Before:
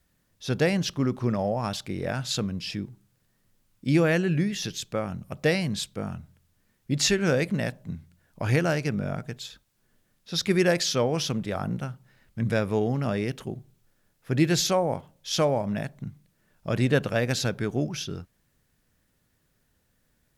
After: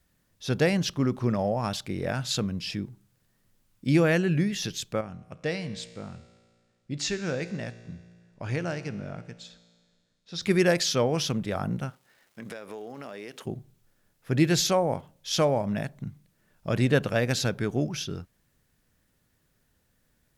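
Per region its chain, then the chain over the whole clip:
0:05.01–0:10.42: low-pass filter 8,400 Hz 24 dB per octave + tuned comb filter 58 Hz, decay 1.8 s
0:11.89–0:13.45: high-pass filter 360 Hz + downward compressor 8 to 1, threshold −35 dBFS + surface crackle 440 per second −54 dBFS
whole clip: no processing

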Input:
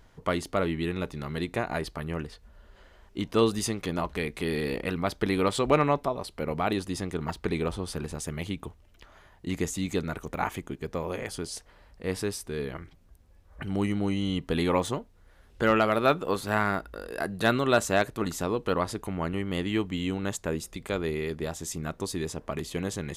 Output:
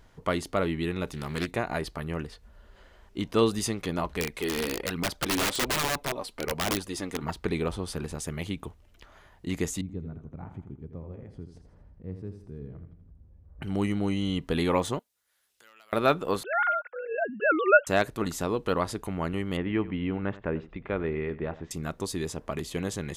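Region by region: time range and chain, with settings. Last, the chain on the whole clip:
0:01.07–0:01.51: high-shelf EQ 4,500 Hz +10.5 dB + highs frequency-modulated by the lows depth 0.31 ms
0:04.20–0:07.23: parametric band 63 Hz −7.5 dB 2.9 octaves + phase shifter 1.2 Hz, delay 4.4 ms, feedback 44% + wrap-around overflow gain 21 dB
0:09.81–0:13.62: resonant band-pass 100 Hz, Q 1.1 + upward compression, threshold −42 dBFS + repeating echo 82 ms, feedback 44%, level −9.5 dB
0:14.99–0:15.93: downward compressor 5 to 1, threshold −37 dBFS + first difference
0:16.43–0:17.87: three sine waves on the formant tracks + dynamic equaliser 1,400 Hz, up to +6 dB, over −39 dBFS, Q 6.3
0:19.57–0:21.71: low-pass filter 2,400 Hz 24 dB per octave + single-tap delay 92 ms −17.5 dB
whole clip: no processing

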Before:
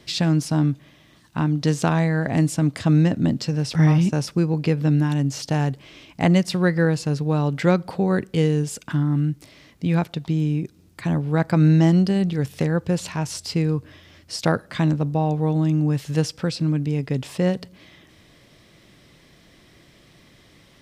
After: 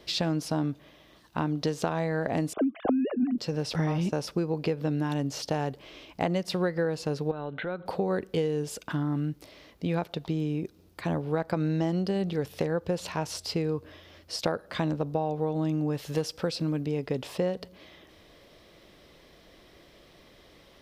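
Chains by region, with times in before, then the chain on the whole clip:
0:02.53–0:03.38: three sine waves on the formant tracks + low-shelf EQ 290 Hz +11 dB + notch comb filter 910 Hz
0:07.31–0:07.86: Chebyshev low-pass filter 4,100 Hz, order 10 + parametric band 1,500 Hz +11.5 dB 0.22 octaves + downward compressor 16 to 1, threshold −27 dBFS
0:16.03–0:16.82: high-shelf EQ 7,900 Hz +6 dB + hard clipping −12 dBFS
whole clip: octave-band graphic EQ 125/250/500/2,000/8,000 Hz −10/−4/+4/−4/−8 dB; downward compressor, threshold −24 dBFS

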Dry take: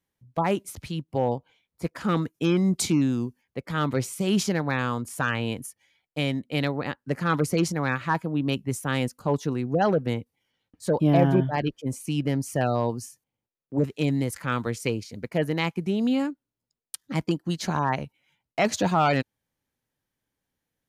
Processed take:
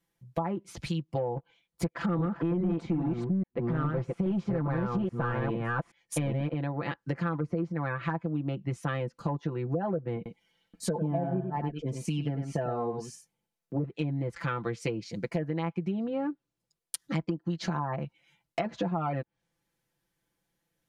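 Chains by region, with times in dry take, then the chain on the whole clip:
0:01.36–0:06.54: delay that plays each chunk backwards 414 ms, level −1.5 dB + leveller curve on the samples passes 2
0:10.16–0:13.75: comb filter 4.6 ms, depth 38% + single-tap delay 96 ms −8.5 dB
whole clip: treble cut that deepens with the level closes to 1,200 Hz, closed at −20 dBFS; comb filter 5.9 ms, depth 77%; downward compressor 6 to 1, threshold −29 dBFS; level +1 dB

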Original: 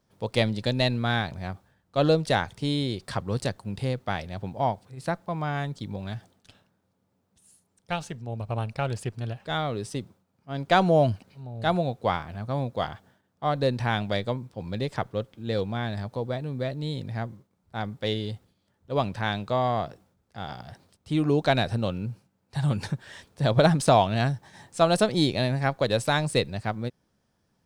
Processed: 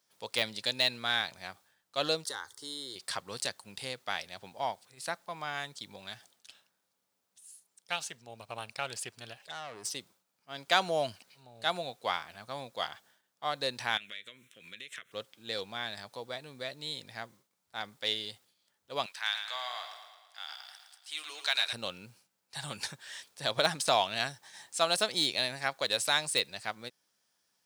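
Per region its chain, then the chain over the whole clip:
0:02.24–0:02.96: downward compressor 2.5 to 1, threshold −27 dBFS + phaser with its sweep stopped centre 670 Hz, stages 6
0:09.42–0:09.92: phaser swept by the level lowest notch 190 Hz, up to 3,500 Hz, full sweep at −27.5 dBFS + transient designer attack −4 dB, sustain +7 dB + tube saturation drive 30 dB, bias 0.4
0:13.97–0:15.12: meter weighting curve D + downward compressor, threshold −35 dBFS + phaser with its sweep stopped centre 2,000 Hz, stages 4
0:19.06–0:21.73: high-pass filter 1,300 Hz + repeating echo 112 ms, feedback 58%, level −8 dB
whole clip: high-pass filter 1,400 Hz 6 dB per octave; de-essing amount 65%; high-shelf EQ 2,700 Hz +8.5 dB; level −2 dB

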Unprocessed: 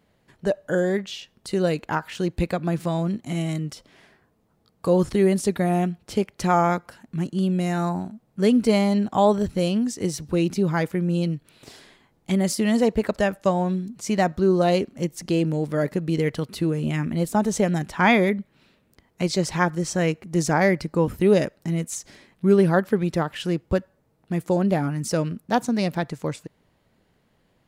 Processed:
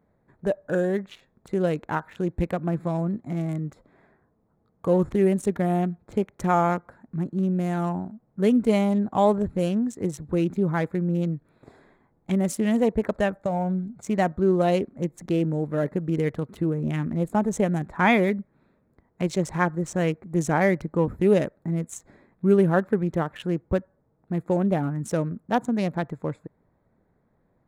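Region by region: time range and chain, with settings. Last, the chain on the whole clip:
0:13.43–0:14.03: parametric band 380 Hz +7 dB 0.26 octaves + comb filter 1.4 ms, depth 64% + downward compressor, threshold −19 dBFS
whole clip: adaptive Wiener filter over 15 samples; parametric band 4,800 Hz −11 dB 0.46 octaves; level −1.5 dB

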